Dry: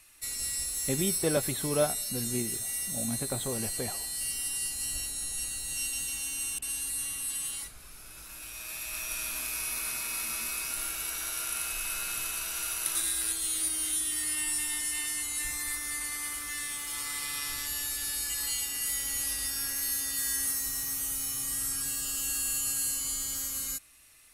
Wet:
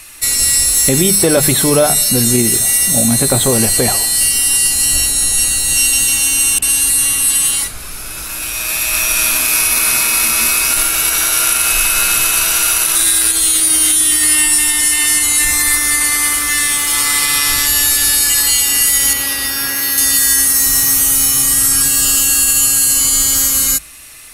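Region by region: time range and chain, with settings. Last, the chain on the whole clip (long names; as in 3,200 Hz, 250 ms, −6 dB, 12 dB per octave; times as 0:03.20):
0:19.13–0:19.98: high-pass filter 160 Hz 6 dB per octave + parametric band 8,200 Hz −12 dB 1.2 octaves
whole clip: mains-hum notches 50/100/150/200 Hz; boost into a limiter +22.5 dB; level −1 dB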